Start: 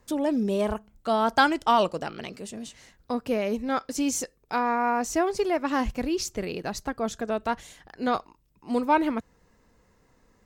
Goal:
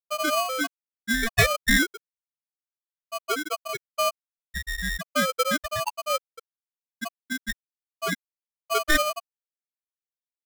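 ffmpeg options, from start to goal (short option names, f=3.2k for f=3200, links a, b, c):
-af "afftfilt=real='re*gte(hypot(re,im),0.447)':imag='im*gte(hypot(re,im),0.447)':win_size=1024:overlap=0.75,aeval=exprs='val(0)*sgn(sin(2*PI*910*n/s))':c=same,volume=2dB"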